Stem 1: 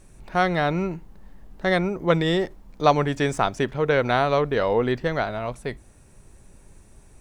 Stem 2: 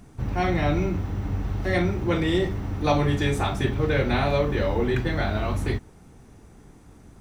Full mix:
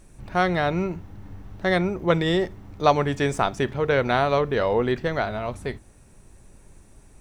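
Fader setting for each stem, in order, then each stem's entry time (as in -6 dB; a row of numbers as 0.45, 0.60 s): -0.5, -14.0 dB; 0.00, 0.00 s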